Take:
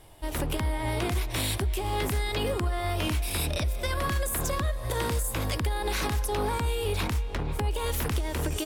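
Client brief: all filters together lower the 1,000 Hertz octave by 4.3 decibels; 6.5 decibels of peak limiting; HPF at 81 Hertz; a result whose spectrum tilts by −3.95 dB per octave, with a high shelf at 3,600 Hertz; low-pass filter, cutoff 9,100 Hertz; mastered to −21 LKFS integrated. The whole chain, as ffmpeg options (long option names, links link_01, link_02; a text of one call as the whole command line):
ffmpeg -i in.wav -af "highpass=81,lowpass=9100,equalizer=frequency=1000:width_type=o:gain=-6,highshelf=frequency=3600:gain=8,volume=10.5dB,alimiter=limit=-10.5dB:level=0:latency=1" out.wav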